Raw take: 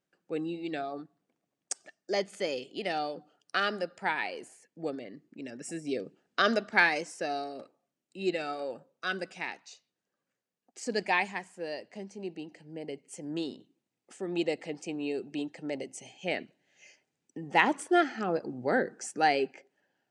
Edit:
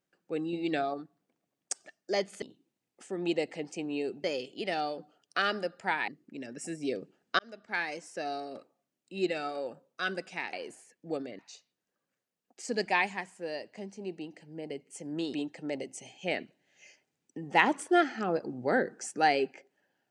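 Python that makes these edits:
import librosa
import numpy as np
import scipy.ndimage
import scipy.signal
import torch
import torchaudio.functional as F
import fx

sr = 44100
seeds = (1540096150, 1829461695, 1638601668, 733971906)

y = fx.edit(x, sr, fx.clip_gain(start_s=0.53, length_s=0.41, db=4.5),
    fx.move(start_s=4.26, length_s=0.86, to_s=9.57),
    fx.fade_in_span(start_s=6.43, length_s=1.15),
    fx.move(start_s=13.52, length_s=1.82, to_s=2.42), tone=tone)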